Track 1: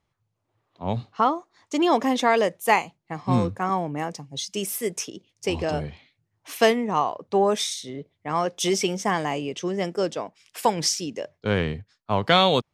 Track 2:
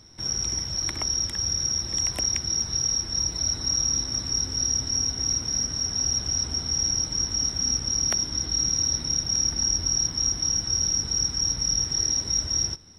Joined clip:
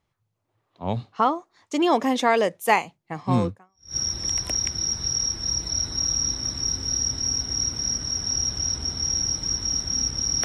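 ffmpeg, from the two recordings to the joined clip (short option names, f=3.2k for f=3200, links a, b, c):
-filter_complex "[0:a]apad=whole_dur=10.44,atrim=end=10.44,atrim=end=3.96,asetpts=PTS-STARTPTS[a];[1:a]atrim=start=1.19:end=8.13,asetpts=PTS-STARTPTS[b];[a][b]acrossfade=d=0.46:c1=exp:c2=exp"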